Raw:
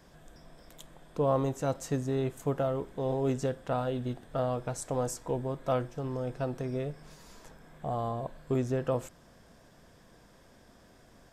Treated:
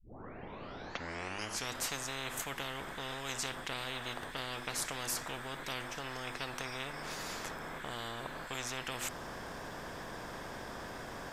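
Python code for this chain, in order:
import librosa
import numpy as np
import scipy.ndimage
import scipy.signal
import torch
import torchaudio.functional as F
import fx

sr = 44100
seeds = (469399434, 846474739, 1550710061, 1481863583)

y = fx.tape_start_head(x, sr, length_s=1.83)
y = fx.peak_eq(y, sr, hz=9500.0, db=-9.5, octaves=2.9)
y = fx.hum_notches(y, sr, base_hz=50, count=7)
y = fx.spectral_comp(y, sr, ratio=10.0)
y = y * 10.0 ** (-4.0 / 20.0)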